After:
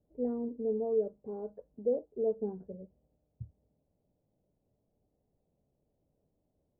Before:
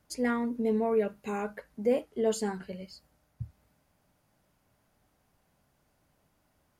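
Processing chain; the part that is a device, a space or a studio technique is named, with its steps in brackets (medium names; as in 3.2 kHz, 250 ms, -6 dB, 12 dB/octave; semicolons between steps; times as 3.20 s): 0.48–2.39 s: dynamic bell 160 Hz, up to -5 dB, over -43 dBFS, Q 0.72; under water (low-pass 630 Hz 24 dB/octave; peaking EQ 450 Hz +5 dB 0.57 oct); trim -5.5 dB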